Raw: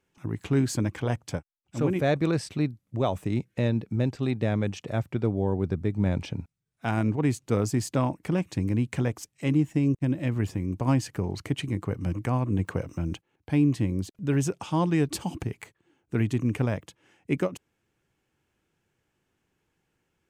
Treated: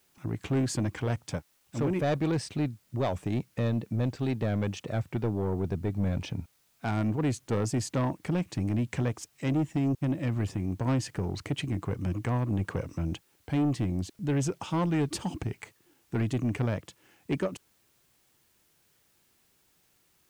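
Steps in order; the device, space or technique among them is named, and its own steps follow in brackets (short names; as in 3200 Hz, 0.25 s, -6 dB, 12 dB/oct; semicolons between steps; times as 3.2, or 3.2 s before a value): compact cassette (soft clip -21.5 dBFS, distortion -13 dB; LPF 9600 Hz; wow and flutter; white noise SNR 38 dB)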